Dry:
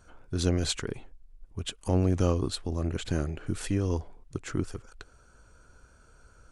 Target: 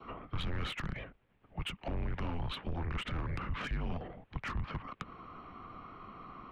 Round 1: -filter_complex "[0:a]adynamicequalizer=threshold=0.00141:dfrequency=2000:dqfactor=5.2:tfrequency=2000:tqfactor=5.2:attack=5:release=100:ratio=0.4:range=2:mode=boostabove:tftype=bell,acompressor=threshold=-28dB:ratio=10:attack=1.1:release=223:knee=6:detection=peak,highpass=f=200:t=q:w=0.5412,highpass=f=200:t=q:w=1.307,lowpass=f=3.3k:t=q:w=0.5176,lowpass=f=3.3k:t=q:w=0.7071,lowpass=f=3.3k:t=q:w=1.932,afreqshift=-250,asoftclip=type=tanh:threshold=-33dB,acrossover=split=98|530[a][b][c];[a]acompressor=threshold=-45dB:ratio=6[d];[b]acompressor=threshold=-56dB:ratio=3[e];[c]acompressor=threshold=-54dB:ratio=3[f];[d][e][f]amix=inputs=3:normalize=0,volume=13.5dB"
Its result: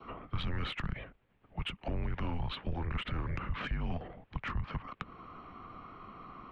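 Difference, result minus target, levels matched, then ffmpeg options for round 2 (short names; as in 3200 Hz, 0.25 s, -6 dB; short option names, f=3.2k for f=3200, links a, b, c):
soft clip: distortion -8 dB
-filter_complex "[0:a]adynamicequalizer=threshold=0.00141:dfrequency=2000:dqfactor=5.2:tfrequency=2000:tqfactor=5.2:attack=5:release=100:ratio=0.4:range=2:mode=boostabove:tftype=bell,acompressor=threshold=-28dB:ratio=10:attack=1.1:release=223:knee=6:detection=peak,highpass=f=200:t=q:w=0.5412,highpass=f=200:t=q:w=1.307,lowpass=f=3.3k:t=q:w=0.5176,lowpass=f=3.3k:t=q:w=0.7071,lowpass=f=3.3k:t=q:w=1.932,afreqshift=-250,asoftclip=type=tanh:threshold=-40.5dB,acrossover=split=98|530[a][b][c];[a]acompressor=threshold=-45dB:ratio=6[d];[b]acompressor=threshold=-56dB:ratio=3[e];[c]acompressor=threshold=-54dB:ratio=3[f];[d][e][f]amix=inputs=3:normalize=0,volume=13.5dB"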